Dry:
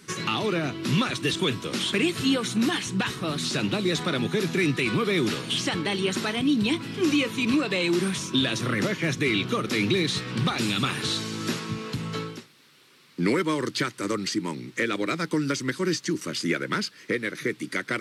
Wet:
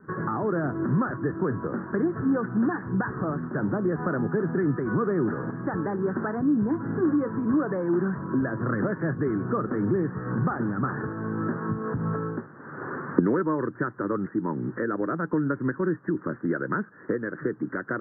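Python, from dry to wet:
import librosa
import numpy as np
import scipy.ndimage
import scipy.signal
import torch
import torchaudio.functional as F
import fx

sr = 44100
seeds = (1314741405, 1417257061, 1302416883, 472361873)

y = fx.recorder_agc(x, sr, target_db=-19.0, rise_db_per_s=44.0, max_gain_db=30)
y = scipy.signal.sosfilt(scipy.signal.butter(16, 1700.0, 'lowpass', fs=sr, output='sos'), y)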